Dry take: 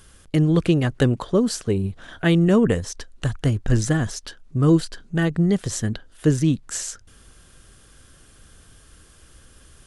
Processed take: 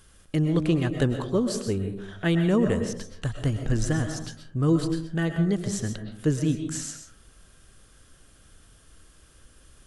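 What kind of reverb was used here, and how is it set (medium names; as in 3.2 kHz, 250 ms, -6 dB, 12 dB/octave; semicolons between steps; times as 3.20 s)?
algorithmic reverb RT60 0.62 s, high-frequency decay 0.35×, pre-delay 85 ms, DRR 6 dB; trim -5.5 dB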